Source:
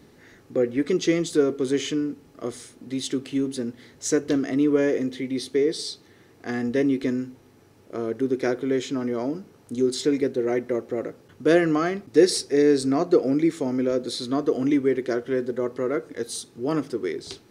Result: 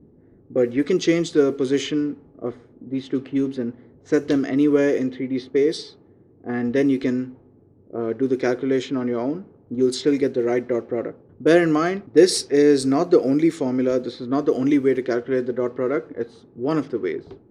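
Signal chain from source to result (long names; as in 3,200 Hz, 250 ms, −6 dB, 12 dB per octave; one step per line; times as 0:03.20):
low-pass that shuts in the quiet parts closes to 360 Hz, open at −18 dBFS
level +3 dB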